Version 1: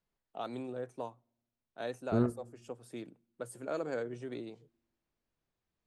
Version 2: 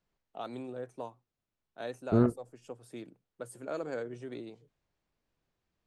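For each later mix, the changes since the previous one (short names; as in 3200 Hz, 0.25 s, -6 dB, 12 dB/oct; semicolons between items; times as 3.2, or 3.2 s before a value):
second voice +7.0 dB; reverb: off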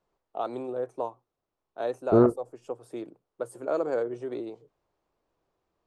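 master: add band shelf 630 Hz +9.5 dB 2.3 oct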